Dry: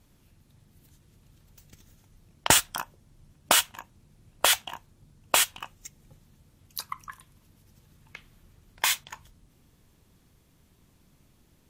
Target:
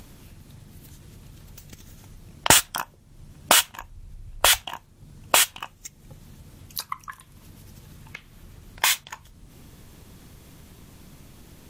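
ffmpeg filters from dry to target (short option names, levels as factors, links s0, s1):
-filter_complex "[0:a]asplit=3[s0][s1][s2];[s0]afade=t=out:st=3.79:d=0.02[s3];[s1]asubboost=boost=8.5:cutoff=73,afade=t=in:st=3.79:d=0.02,afade=t=out:st=4.63:d=0.02[s4];[s2]afade=t=in:st=4.63:d=0.02[s5];[s3][s4][s5]amix=inputs=3:normalize=0,acompressor=mode=upward:threshold=0.01:ratio=2.5,volume=1.58"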